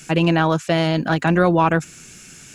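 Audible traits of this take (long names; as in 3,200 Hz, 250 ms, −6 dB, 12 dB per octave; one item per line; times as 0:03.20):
a quantiser's noise floor 12 bits, dither none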